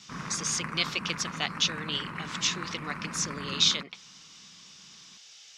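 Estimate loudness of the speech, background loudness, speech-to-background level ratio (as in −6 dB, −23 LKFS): −29.5 LKFS, −38.0 LKFS, 8.5 dB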